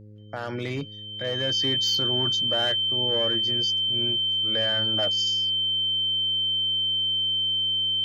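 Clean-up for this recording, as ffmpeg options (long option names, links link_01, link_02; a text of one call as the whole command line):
ffmpeg -i in.wav -af "bandreject=frequency=105.2:width_type=h:width=4,bandreject=frequency=210.4:width_type=h:width=4,bandreject=frequency=315.6:width_type=h:width=4,bandreject=frequency=420.8:width_type=h:width=4,bandreject=frequency=526:width_type=h:width=4,bandreject=frequency=3100:width=30" out.wav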